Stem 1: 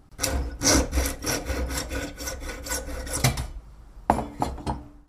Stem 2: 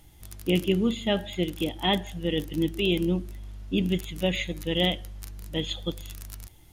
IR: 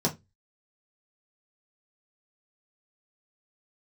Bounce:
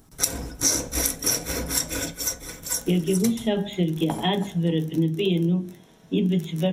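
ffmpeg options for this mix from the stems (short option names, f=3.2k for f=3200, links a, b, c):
-filter_complex "[0:a]crystalizer=i=3.5:c=0,volume=-3dB,afade=t=out:st=2.06:d=0.47:silence=0.473151,afade=t=out:st=4.19:d=0.3:silence=0.316228,asplit=2[a][b];[b]volume=-15dB[c];[1:a]bandreject=f=50:t=h:w=6,bandreject=f=100:t=h:w=6,bandreject=f=150:t=h:w=6,bandreject=f=200:t=h:w=6,bandreject=f=250:t=h:w=6,bandreject=f=300:t=h:w=6,bandreject=f=350:t=h:w=6,bandreject=f=400:t=h:w=6,adelay=2400,volume=-1dB,asplit=2[d][e];[e]volume=-8.5dB[f];[2:a]atrim=start_sample=2205[g];[c][f]amix=inputs=2:normalize=0[h];[h][g]afir=irnorm=-1:irlink=0[i];[a][d][i]amix=inputs=3:normalize=0,acompressor=threshold=-19dB:ratio=6"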